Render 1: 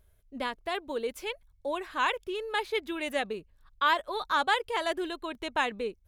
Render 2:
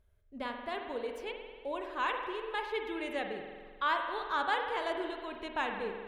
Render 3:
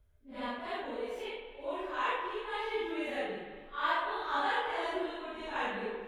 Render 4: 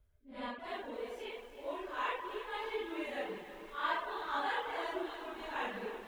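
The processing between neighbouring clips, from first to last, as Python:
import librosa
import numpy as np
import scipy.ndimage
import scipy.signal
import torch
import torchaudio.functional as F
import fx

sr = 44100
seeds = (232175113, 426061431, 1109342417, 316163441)

y1 = fx.lowpass(x, sr, hz=3400.0, slope=6)
y1 = fx.rev_spring(y1, sr, rt60_s=1.7, pass_ms=(45,), chirp_ms=60, drr_db=3.5)
y1 = F.gain(torch.from_numpy(y1), -5.5).numpy()
y2 = fx.phase_scramble(y1, sr, seeds[0], window_ms=200)
y3 = fx.dereverb_blind(y2, sr, rt60_s=0.52)
y3 = fx.echo_crushed(y3, sr, ms=318, feedback_pct=80, bits=9, wet_db=-13.5)
y3 = F.gain(torch.from_numpy(y3), -3.0).numpy()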